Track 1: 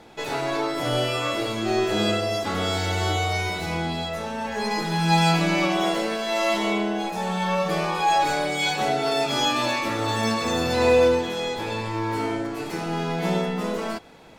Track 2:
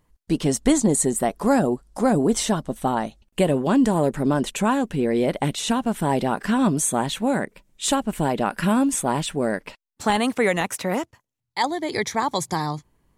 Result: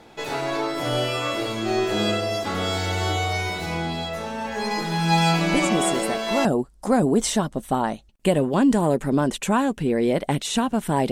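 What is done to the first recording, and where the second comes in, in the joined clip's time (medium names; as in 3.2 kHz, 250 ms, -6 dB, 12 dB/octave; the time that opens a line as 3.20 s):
track 1
5.50 s: add track 2 from 0.63 s 0.95 s -6.5 dB
6.45 s: go over to track 2 from 1.58 s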